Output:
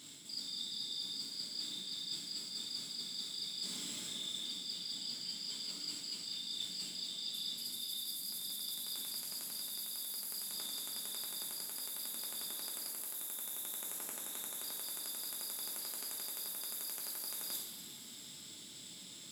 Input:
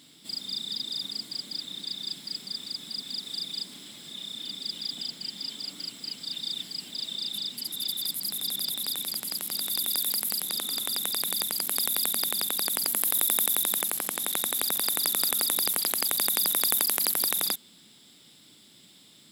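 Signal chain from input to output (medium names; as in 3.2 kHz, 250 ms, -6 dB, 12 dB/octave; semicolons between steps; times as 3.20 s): peaking EQ 7.1 kHz +8 dB 0.71 oct; reverse; compression 12:1, threshold -39 dBFS, peak gain reduction 22 dB; reverse; reverberation, pre-delay 3 ms, DRR -2.5 dB; trim -3 dB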